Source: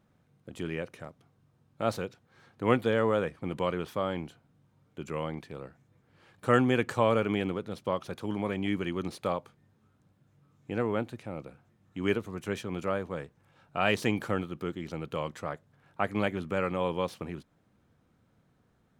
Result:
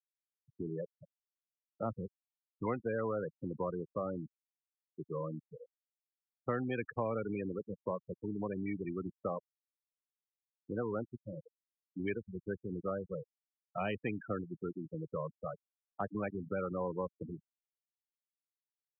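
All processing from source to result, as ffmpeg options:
-filter_complex "[0:a]asettb=1/sr,asplit=3[s0][s1][s2];[s0]atrim=end=1.854[s3];[s1]atrim=start=1.85:end=2.66,asetpts=PTS-STARTPTS,afade=t=in:d=0.004:c=qsin,afade=t=out:st=0.806:d=0.004:c=qsin,lowpass=f=6900:t=q:w=3.3,aecho=1:1:1:0.48,atrim=end_sample=35721[s4];[s2]atrim=start=2.656[s5];[s3][s4]acrossfade=d=0.004:c1=hsin:c2=qsin[s6];[s6][s5]acrossfade=d=0.004:c1=qsin:c2=hsin,afftfilt=real='re*gte(hypot(re,im),0.0631)':imag='im*gte(hypot(re,im),0.0631)':win_size=1024:overlap=0.75,acrossover=split=110|550[s7][s8][s9];[s7]acompressor=threshold=0.00355:ratio=4[s10];[s8]acompressor=threshold=0.02:ratio=4[s11];[s9]acompressor=threshold=0.0158:ratio=4[s12];[s10][s11][s12]amix=inputs=3:normalize=0,volume=0.75"

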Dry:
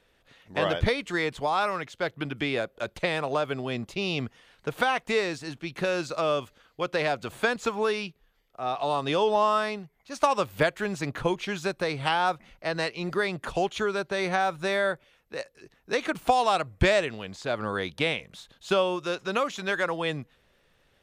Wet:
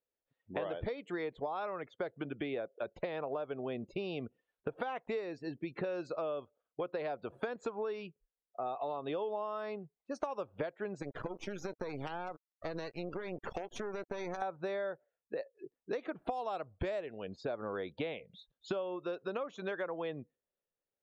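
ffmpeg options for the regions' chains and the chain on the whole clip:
-filter_complex "[0:a]asettb=1/sr,asplit=3[s0][s1][s2];[s0]atrim=end=11.024[s3];[s1]atrim=start=11.02:end=14.42,asetpts=PTS-STARTPTS,afade=t=in:d=0.004:c=qsin,afade=t=out:st=3.396:d=0.004:c=qsin,equalizer=f=5900:t=o:w=0.58:g=10,acrusher=bits=4:dc=4:mix=0:aa=0.000001,acompressor=threshold=0.0355:ratio=16:attack=3.2:release=140:knee=1:detection=peak[s4];[s2]atrim=start=14.416[s5];[s3][s4]acrossfade=d=0.004:c1=hsin:c2=qsin[s6];[s6][s5]acrossfade=d=0.004:c1=qsin:c2=hsin,afftdn=nr=32:nf=-41,equalizer=f=490:w=0.52:g=12,acompressor=threshold=0.0316:ratio=6,volume=0.501"

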